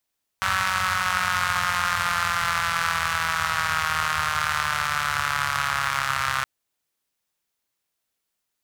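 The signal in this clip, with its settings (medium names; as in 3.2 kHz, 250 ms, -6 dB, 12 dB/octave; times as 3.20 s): four-cylinder engine model, changing speed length 6.02 s, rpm 5700, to 4000, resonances 90/1300 Hz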